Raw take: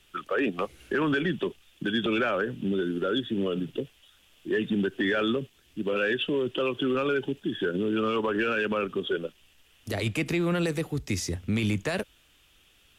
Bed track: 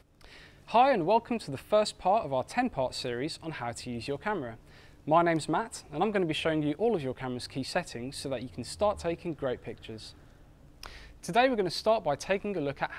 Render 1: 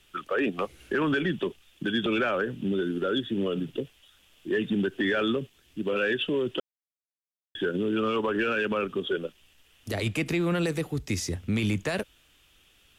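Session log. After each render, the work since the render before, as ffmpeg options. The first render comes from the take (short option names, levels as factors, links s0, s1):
-filter_complex "[0:a]asplit=3[s0][s1][s2];[s0]atrim=end=6.6,asetpts=PTS-STARTPTS,afade=t=out:st=6.596:d=0.004:c=hsin[s3];[s1]atrim=start=6.6:end=7.55,asetpts=PTS-STARTPTS,volume=0[s4];[s2]atrim=start=7.55,asetpts=PTS-STARTPTS,afade=t=in:d=0.004:c=hsin[s5];[s3][s4][s5]concat=n=3:v=0:a=1"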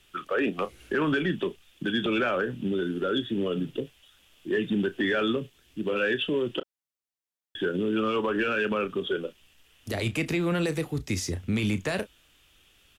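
-filter_complex "[0:a]asplit=2[s0][s1];[s1]adelay=33,volume=0.224[s2];[s0][s2]amix=inputs=2:normalize=0"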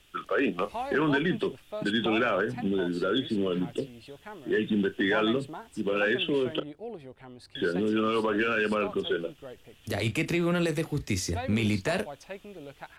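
-filter_complex "[1:a]volume=0.251[s0];[0:a][s0]amix=inputs=2:normalize=0"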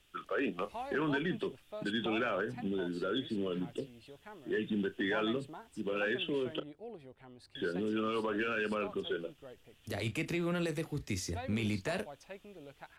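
-af "volume=0.422"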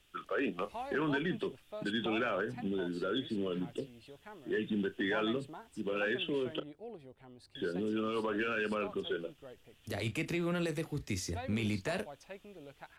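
-filter_complex "[0:a]asettb=1/sr,asplit=3[s0][s1][s2];[s0]atrim=end=6.974[s3];[s1]atrim=start=6.97:end=8.17,asetpts=PTS-STARTPTS,afade=t=in:d=0.004:c=qsin,afade=t=out:st=1.196:d=0.004:c=qsin,equalizer=f=1700:w=0.77:g=-3.5[s4];[s2]atrim=start=8.166[s5];[s3][s4]acrossfade=d=0.004:c1=hsin:c2=qsin[s6];[s6][s5]acrossfade=d=0.004:c1=qsin:c2=hsin"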